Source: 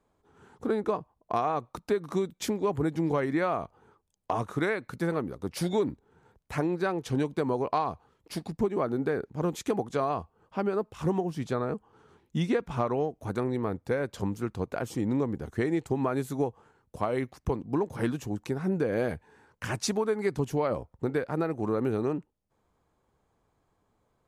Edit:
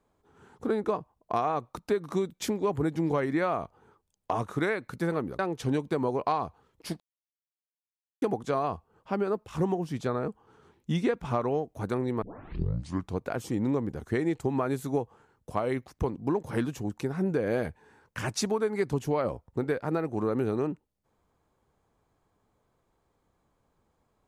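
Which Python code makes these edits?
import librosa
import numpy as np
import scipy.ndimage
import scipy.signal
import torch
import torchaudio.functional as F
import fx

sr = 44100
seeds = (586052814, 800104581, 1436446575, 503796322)

y = fx.edit(x, sr, fx.cut(start_s=5.39, length_s=1.46),
    fx.silence(start_s=8.46, length_s=1.22),
    fx.tape_start(start_s=13.68, length_s=0.94), tone=tone)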